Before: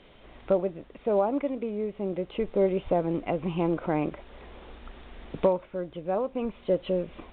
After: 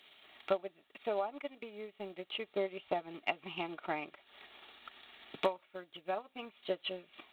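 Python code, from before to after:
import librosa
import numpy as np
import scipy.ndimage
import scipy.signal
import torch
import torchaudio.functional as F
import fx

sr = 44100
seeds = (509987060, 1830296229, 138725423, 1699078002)

y = np.diff(x, prepend=0.0)
y = fx.notch_comb(y, sr, f0_hz=510.0)
y = fx.transient(y, sr, attack_db=8, sustain_db=-8)
y = y * 10.0 ** (9.5 / 20.0)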